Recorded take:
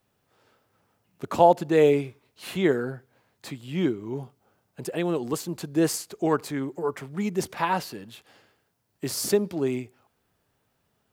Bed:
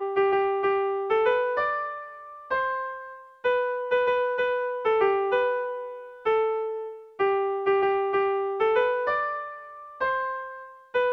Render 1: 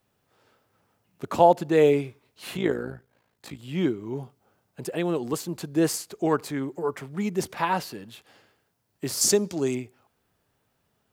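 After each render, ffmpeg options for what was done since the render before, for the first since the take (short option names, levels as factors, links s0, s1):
-filter_complex "[0:a]asettb=1/sr,asplit=3[s0][s1][s2];[s0]atrim=end=2.574[s3];[s1]atrim=start=2.57:end=3.59,asetpts=PTS-STARTPTS,afade=t=in:d=0.004:c=qsin,afade=t=out:st=1.016:d=0.004:c=qsin,tremolo=f=55:d=0.75[s4];[s2]atrim=start=3.586[s5];[s3][s4]acrossfade=d=0.004:c1=hsin:c2=qsin[s6];[s6][s5]acrossfade=d=0.004:c1=qsin:c2=hsin,asettb=1/sr,asplit=3[s7][s8][s9];[s7]atrim=end=9.214[s10];[s8]atrim=start=9.21:end=9.75,asetpts=PTS-STARTPTS,afade=t=in:d=0.004:c=qsin,afade=t=out:st=0.536:d=0.004:c=qsin,equalizer=f=6600:t=o:w=1:g=13.5[s11];[s9]atrim=start=9.746[s12];[s10][s11]acrossfade=d=0.004:c1=hsin:c2=qsin[s13];[s13][s12]acrossfade=d=0.004:c1=qsin:c2=hsin"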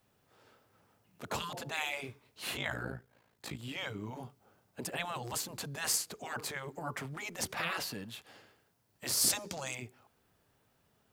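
-af "afftfilt=real='re*lt(hypot(re,im),0.126)':imag='im*lt(hypot(re,im),0.126)':win_size=1024:overlap=0.75,adynamicequalizer=threshold=0.00141:dfrequency=360:dqfactor=1.7:tfrequency=360:tqfactor=1.7:attack=5:release=100:ratio=0.375:range=2.5:mode=cutabove:tftype=bell"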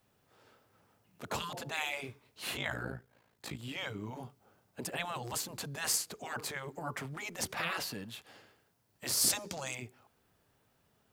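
-af anull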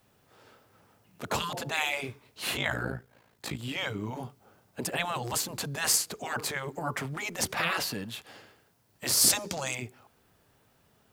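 -af "volume=2.11"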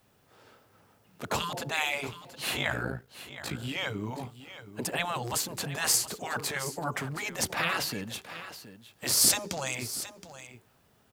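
-af "aecho=1:1:721:0.211"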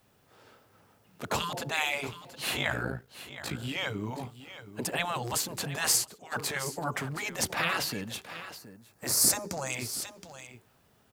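-filter_complex "[0:a]asettb=1/sr,asplit=3[s0][s1][s2];[s0]atrim=end=5.944[s3];[s1]atrim=start=5.94:end=6.35,asetpts=PTS-STARTPTS,afade=t=in:d=0.004:c=qsin,afade=t=out:st=0.406:d=0.004:c=qsin,agate=range=0.251:threshold=0.02:ratio=16:release=100:detection=peak[s4];[s2]atrim=start=6.346[s5];[s3][s4]acrossfade=d=0.004:c1=hsin:c2=qsin[s6];[s6][s5]acrossfade=d=0.004:c1=qsin:c2=hsin,asettb=1/sr,asplit=3[s7][s8][s9];[s7]atrim=end=8.584[s10];[s8]atrim=start=8.58:end=9.7,asetpts=PTS-STARTPTS,afade=t=in:d=0.004:c=qsin,afade=t=out:st=1.116:d=0.004:c=qsin,equalizer=f=3200:w=1.9:g=-13.5[s11];[s9]atrim=start=9.696[s12];[s10][s11]acrossfade=d=0.004:c1=hsin:c2=qsin[s13];[s13][s12]acrossfade=d=0.004:c1=qsin:c2=hsin"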